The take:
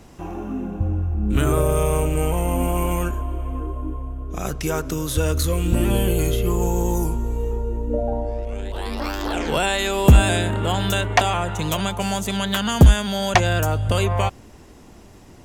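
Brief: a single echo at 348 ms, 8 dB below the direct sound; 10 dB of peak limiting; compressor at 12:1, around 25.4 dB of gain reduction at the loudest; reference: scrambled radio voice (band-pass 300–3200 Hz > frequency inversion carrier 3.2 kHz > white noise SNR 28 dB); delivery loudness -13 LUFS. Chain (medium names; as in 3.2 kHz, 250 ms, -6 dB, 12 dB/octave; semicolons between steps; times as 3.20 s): compression 12:1, threshold -33 dBFS; peak limiter -28.5 dBFS; band-pass 300–3200 Hz; delay 348 ms -8 dB; frequency inversion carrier 3.2 kHz; white noise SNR 28 dB; trim +27 dB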